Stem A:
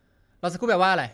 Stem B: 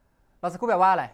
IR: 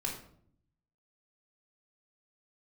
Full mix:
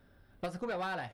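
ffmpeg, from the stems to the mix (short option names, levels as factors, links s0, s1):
-filter_complex "[0:a]volume=1.12[s0];[1:a]alimiter=limit=0.1:level=0:latency=1,volume=-1,adelay=20,volume=0.178,asplit=2[s1][s2];[s2]apad=whole_len=50043[s3];[s0][s3]sidechaincompress=threshold=0.00178:ratio=5:attack=9.1:release=154[s4];[s4][s1]amix=inputs=2:normalize=0,asoftclip=type=tanh:threshold=0.0299,equalizer=f=6700:w=3:g=-11"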